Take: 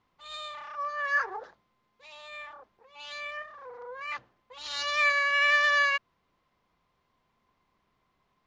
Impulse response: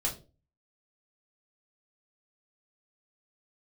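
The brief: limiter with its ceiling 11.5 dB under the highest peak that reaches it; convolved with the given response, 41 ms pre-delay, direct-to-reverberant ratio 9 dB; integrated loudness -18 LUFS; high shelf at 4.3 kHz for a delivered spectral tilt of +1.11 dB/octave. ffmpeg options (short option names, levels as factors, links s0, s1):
-filter_complex "[0:a]highshelf=f=4300:g=5.5,alimiter=level_in=1.19:limit=0.0631:level=0:latency=1,volume=0.841,asplit=2[s0][s1];[1:a]atrim=start_sample=2205,adelay=41[s2];[s1][s2]afir=irnorm=-1:irlink=0,volume=0.211[s3];[s0][s3]amix=inputs=2:normalize=0,volume=6.31"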